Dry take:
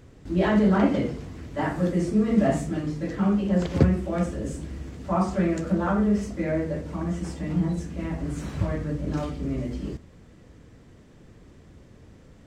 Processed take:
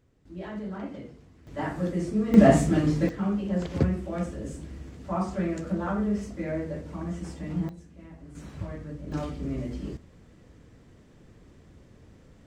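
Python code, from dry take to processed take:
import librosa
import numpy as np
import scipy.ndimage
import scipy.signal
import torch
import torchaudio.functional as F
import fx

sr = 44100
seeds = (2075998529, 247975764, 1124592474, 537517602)

y = fx.gain(x, sr, db=fx.steps((0.0, -16.0), (1.47, -4.5), (2.34, 5.5), (3.09, -5.0), (7.69, -16.5), (8.35, -9.5), (9.12, -3.0)))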